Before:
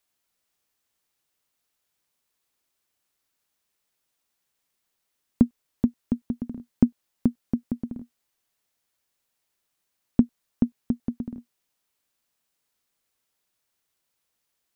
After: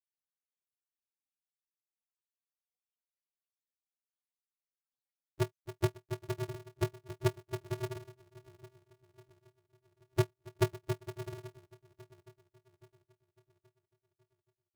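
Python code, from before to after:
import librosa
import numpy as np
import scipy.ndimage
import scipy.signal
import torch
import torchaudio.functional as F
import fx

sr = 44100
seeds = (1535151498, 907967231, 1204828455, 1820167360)

y = fx.echo_bbd(x, sr, ms=275, stages=2048, feedback_pct=75, wet_db=-21.0)
y = y * (1.0 - 0.62 / 2.0 + 0.62 / 2.0 * np.cos(2.0 * np.pi * 1.4 * (np.arange(len(y)) / sr)))
y = fx.spec_topn(y, sr, count=2)
y = y * np.sign(np.sin(2.0 * np.pi * 130.0 * np.arange(len(y)) / sr))
y = y * 10.0 ** (-2.0 / 20.0)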